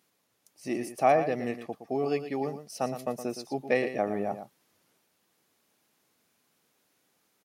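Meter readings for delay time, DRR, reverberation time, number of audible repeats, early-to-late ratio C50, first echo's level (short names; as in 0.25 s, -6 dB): 0.116 s, none, none, 1, none, -10.5 dB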